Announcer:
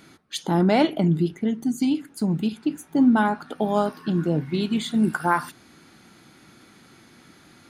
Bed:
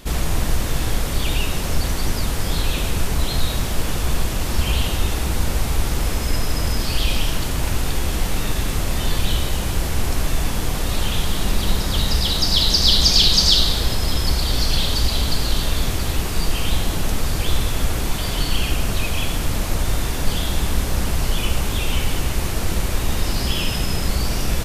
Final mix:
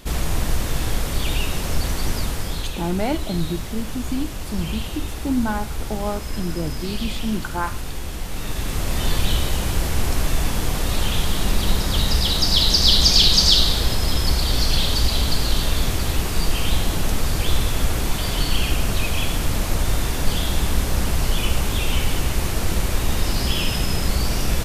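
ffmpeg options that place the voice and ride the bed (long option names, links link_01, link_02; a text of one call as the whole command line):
ffmpeg -i stem1.wav -i stem2.wav -filter_complex "[0:a]adelay=2300,volume=-4.5dB[link_01];[1:a]volume=6.5dB,afade=type=out:start_time=2.18:duration=0.53:silence=0.473151,afade=type=in:start_time=8.27:duration=0.8:silence=0.398107[link_02];[link_01][link_02]amix=inputs=2:normalize=0" out.wav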